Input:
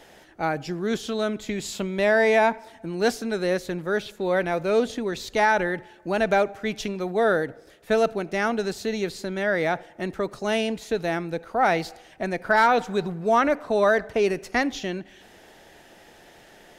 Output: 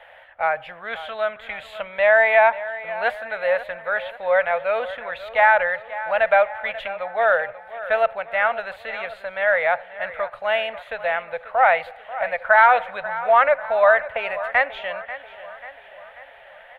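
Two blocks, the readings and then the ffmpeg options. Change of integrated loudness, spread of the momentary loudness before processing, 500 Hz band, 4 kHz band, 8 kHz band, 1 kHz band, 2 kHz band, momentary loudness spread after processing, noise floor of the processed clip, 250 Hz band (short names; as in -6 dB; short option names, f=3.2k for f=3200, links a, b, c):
+4.0 dB, 10 LU, +2.5 dB, -2.0 dB, under -20 dB, +5.0 dB, +6.5 dB, 15 LU, -46 dBFS, under -20 dB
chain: -filter_complex "[0:a]firequalizer=gain_entry='entry(100,0);entry(160,-14);entry(370,-21);entry(530,12);entry(800,11);entry(2000,14);entry(3400,6);entry(5400,-25);entry(9900,-9)':delay=0.05:min_phase=1,asplit=2[a][b];[b]adelay=538,lowpass=f=4.8k:p=1,volume=-14.5dB,asplit=2[c][d];[d]adelay=538,lowpass=f=4.8k:p=1,volume=0.54,asplit=2[e][f];[f]adelay=538,lowpass=f=4.8k:p=1,volume=0.54,asplit=2[g][h];[h]adelay=538,lowpass=f=4.8k:p=1,volume=0.54,asplit=2[i][j];[j]adelay=538,lowpass=f=4.8k:p=1,volume=0.54[k];[c][e][g][i][k]amix=inputs=5:normalize=0[l];[a][l]amix=inputs=2:normalize=0,volume=-6.5dB"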